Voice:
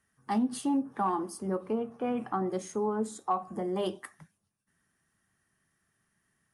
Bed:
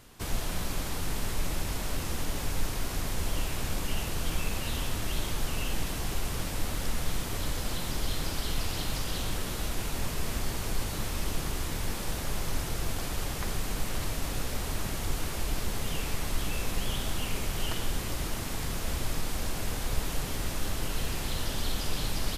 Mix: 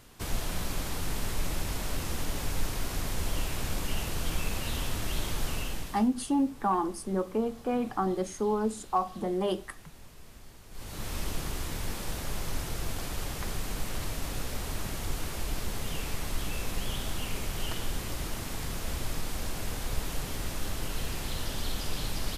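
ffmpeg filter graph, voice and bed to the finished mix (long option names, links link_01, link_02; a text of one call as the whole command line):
ffmpeg -i stem1.wav -i stem2.wav -filter_complex "[0:a]adelay=5650,volume=2dB[link_01];[1:a]volume=16.5dB,afade=type=out:start_time=5.51:duration=0.59:silence=0.11885,afade=type=in:start_time=10.7:duration=0.44:silence=0.141254[link_02];[link_01][link_02]amix=inputs=2:normalize=0" out.wav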